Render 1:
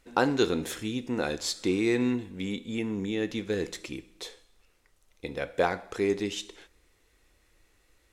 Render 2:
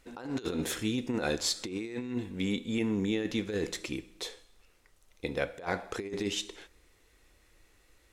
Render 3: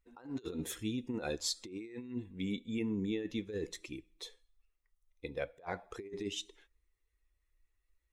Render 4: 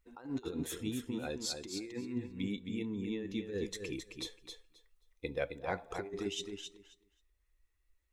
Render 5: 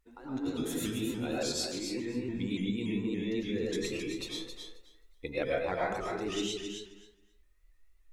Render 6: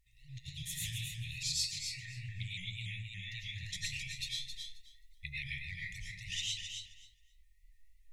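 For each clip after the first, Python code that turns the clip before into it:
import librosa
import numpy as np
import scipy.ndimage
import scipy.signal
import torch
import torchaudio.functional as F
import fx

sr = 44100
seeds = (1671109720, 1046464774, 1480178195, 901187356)

y1 = fx.over_compress(x, sr, threshold_db=-30.0, ratio=-0.5)
y1 = y1 * librosa.db_to_amplitude(-1.0)
y2 = fx.bin_expand(y1, sr, power=1.5)
y2 = fx.dynamic_eq(y2, sr, hz=1600.0, q=1.2, threshold_db=-51.0, ratio=4.0, max_db=-4)
y2 = y2 * librosa.db_to_amplitude(-3.5)
y3 = fx.rider(y2, sr, range_db=4, speed_s=0.5)
y3 = fx.echo_feedback(y3, sr, ms=266, feedback_pct=16, wet_db=-6.5)
y4 = fx.rev_freeverb(y3, sr, rt60_s=0.64, hf_ratio=0.5, predelay_ms=70, drr_db=-5.0)
y4 = fx.vibrato_shape(y4, sr, shape='saw_up', rate_hz=3.5, depth_cents=100.0)
y5 = fx.brickwall_bandstop(y4, sr, low_hz=160.0, high_hz=1800.0)
y5 = fx.doppler_dist(y5, sr, depth_ms=0.14)
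y5 = y5 * librosa.db_to_amplitude(1.5)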